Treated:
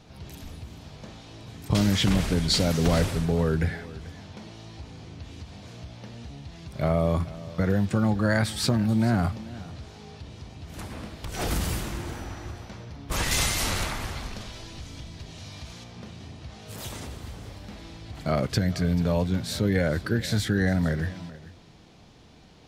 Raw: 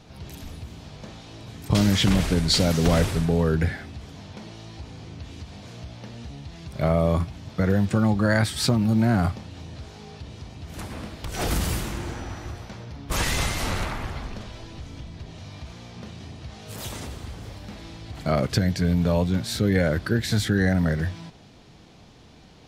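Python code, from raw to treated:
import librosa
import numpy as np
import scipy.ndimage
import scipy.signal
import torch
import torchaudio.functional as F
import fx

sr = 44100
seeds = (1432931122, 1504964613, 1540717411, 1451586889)

y = fx.high_shelf(x, sr, hz=3000.0, db=9.5, at=(13.31, 15.84))
y = y + 10.0 ** (-18.0 / 20.0) * np.pad(y, (int(437 * sr / 1000.0), 0))[:len(y)]
y = F.gain(torch.from_numpy(y), -2.5).numpy()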